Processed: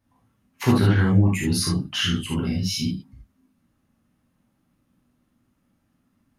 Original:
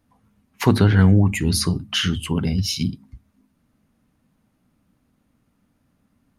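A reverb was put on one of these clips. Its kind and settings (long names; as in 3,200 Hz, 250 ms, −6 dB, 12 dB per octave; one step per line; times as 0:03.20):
reverb whose tail is shaped and stops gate 100 ms flat, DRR −4.5 dB
level −8 dB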